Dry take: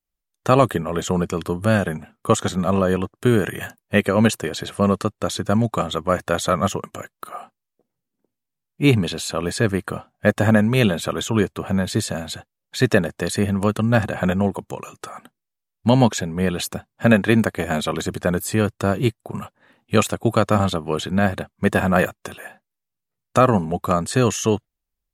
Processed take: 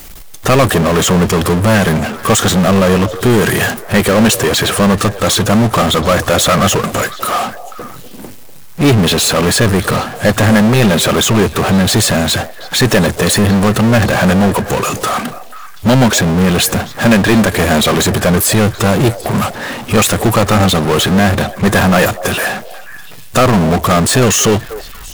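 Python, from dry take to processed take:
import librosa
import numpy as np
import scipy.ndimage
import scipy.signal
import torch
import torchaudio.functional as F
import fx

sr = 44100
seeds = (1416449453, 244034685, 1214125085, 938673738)

y = fx.power_curve(x, sr, exponent=0.35)
y = fx.echo_stepped(y, sr, ms=244, hz=570.0, octaves=1.4, feedback_pct=70, wet_db=-11.0)
y = y * librosa.db_to_amplitude(-1.0)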